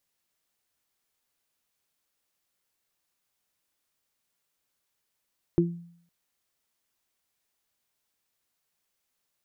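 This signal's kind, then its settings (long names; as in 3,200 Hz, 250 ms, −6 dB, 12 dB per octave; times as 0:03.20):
harmonic partials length 0.51 s, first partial 171 Hz, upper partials 5 dB, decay 0.63 s, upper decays 0.22 s, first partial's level −20 dB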